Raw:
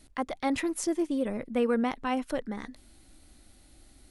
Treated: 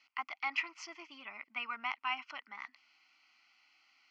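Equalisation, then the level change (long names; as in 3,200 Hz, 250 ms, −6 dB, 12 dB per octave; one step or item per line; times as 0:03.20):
flat-topped band-pass 2,900 Hz, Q 0.71
high-frequency loss of the air 240 metres
phaser with its sweep stopped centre 2,500 Hz, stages 8
+8.5 dB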